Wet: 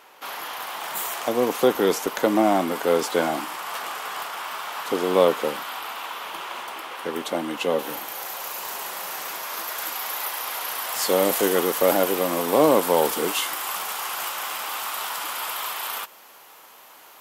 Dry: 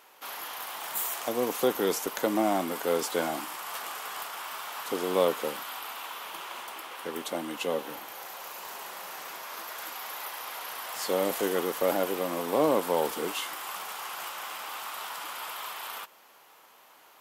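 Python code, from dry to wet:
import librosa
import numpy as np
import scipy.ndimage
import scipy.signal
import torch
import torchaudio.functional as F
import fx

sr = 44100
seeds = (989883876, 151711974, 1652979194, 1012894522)

y = fx.high_shelf(x, sr, hz=5800.0, db=fx.steps((0.0, -7.0), (7.78, 4.5)))
y = y * librosa.db_to_amplitude(7.0)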